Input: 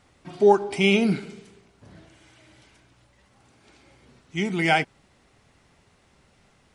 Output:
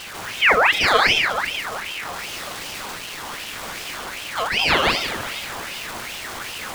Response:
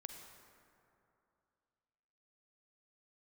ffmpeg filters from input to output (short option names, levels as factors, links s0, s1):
-filter_complex "[0:a]aeval=exprs='val(0)+0.5*0.0355*sgn(val(0))':c=same,asplit=2[s0][s1];[1:a]atrim=start_sample=2205,adelay=147[s2];[s1][s2]afir=irnorm=-1:irlink=0,volume=1.88[s3];[s0][s3]amix=inputs=2:normalize=0,aeval=exprs='val(0)*sin(2*PI*1900*n/s+1900*0.55/2.6*sin(2*PI*2.6*n/s))':c=same,volume=1.26"